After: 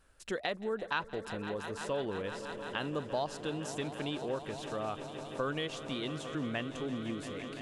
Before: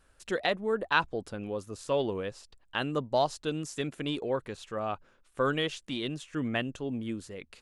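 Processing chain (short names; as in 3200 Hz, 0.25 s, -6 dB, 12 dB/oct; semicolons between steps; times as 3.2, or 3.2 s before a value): swelling echo 0.17 s, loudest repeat 5, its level -17.5 dB; compressor 2:1, threshold -33 dBFS, peak gain reduction 8 dB; gain -1.5 dB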